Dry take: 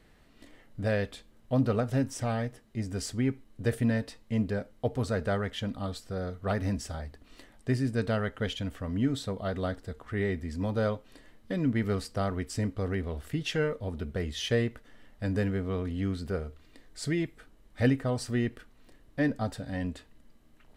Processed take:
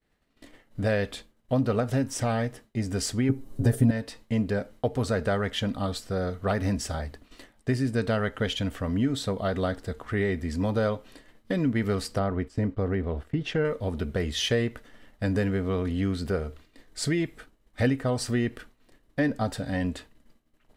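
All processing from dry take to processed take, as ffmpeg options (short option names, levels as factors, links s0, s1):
-filter_complex "[0:a]asettb=1/sr,asplit=3[s0][s1][s2];[s0]atrim=end=3.294[s3];[s1]atrim=start=3.29:end=3.91,asetpts=PTS-STARTPTS,afade=t=in:d=0.004:c=qsin,afade=t=out:st=0.616:d=0.004:c=qsin,acontrast=68,equalizer=f=2400:w=0.55:g=-13,aecho=1:1:7.4:0.96,atrim=end_sample=27342[s4];[s2]atrim=start=3.906[s5];[s3][s4]acrossfade=d=0.004:c1=hsin:c2=qsin[s6];[s6][s5]acrossfade=d=0.004:c1=qsin:c2=hsin,asettb=1/sr,asplit=3[s7][s8][s9];[s7]atrim=end=12.194[s10];[s8]atrim=start=12.19:end=13.65,asetpts=PTS-STARTPTS,afade=t=in:d=0.004:c=qsin,afade=t=out:st=1.456:d=0.004:c=qsin,lowpass=f=1300:p=1,agate=range=0.316:threshold=0.00501:ratio=16:release=100:detection=peak[s11];[s9]atrim=start=13.646[s12];[s10][s11]acrossfade=d=0.004:c1=hsin:c2=qsin[s13];[s13][s12]acrossfade=d=0.004:c1=qsin:c2=hsin,agate=range=0.0224:threshold=0.00447:ratio=3:detection=peak,lowshelf=f=150:g=-3.5,acompressor=threshold=0.0251:ratio=2,volume=2.37"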